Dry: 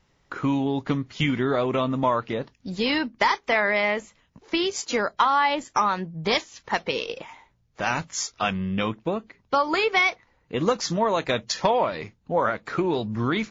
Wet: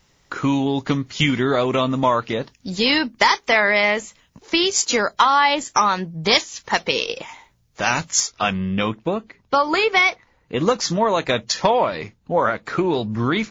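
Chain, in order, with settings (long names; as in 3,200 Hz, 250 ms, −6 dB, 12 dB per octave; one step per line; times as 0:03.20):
high-shelf EQ 4,300 Hz +12 dB, from 0:08.20 +2.5 dB
level +4 dB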